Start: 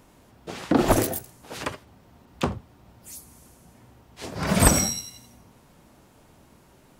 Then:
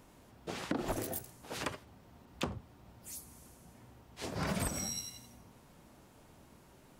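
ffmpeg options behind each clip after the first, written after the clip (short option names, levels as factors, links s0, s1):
-af "acompressor=threshold=0.0447:ratio=16,volume=0.596"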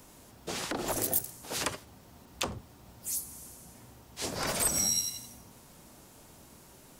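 -filter_complex "[0:a]bass=f=250:g=-1,treble=f=4000:g=9,acrossover=split=350|940|4900[s0][s1][s2][s3];[s0]aeval=exprs='0.0106*(abs(mod(val(0)/0.0106+3,4)-2)-1)':c=same[s4];[s4][s1][s2][s3]amix=inputs=4:normalize=0,volume=1.58"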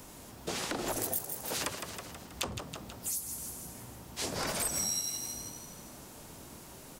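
-filter_complex "[0:a]asplit=2[s0][s1];[s1]asplit=6[s2][s3][s4][s5][s6][s7];[s2]adelay=161,afreqshift=58,volume=0.299[s8];[s3]adelay=322,afreqshift=116,volume=0.153[s9];[s4]adelay=483,afreqshift=174,volume=0.0776[s10];[s5]adelay=644,afreqshift=232,volume=0.0398[s11];[s6]adelay=805,afreqshift=290,volume=0.0202[s12];[s7]adelay=966,afreqshift=348,volume=0.0104[s13];[s8][s9][s10][s11][s12][s13]amix=inputs=6:normalize=0[s14];[s0][s14]amix=inputs=2:normalize=0,acompressor=threshold=0.0112:ratio=2.5,volume=1.68"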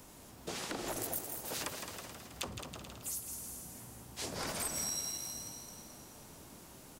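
-af "aecho=1:1:216|432|648|864|1080|1296:0.355|0.192|0.103|0.0559|0.0302|0.0163,volume=0.562"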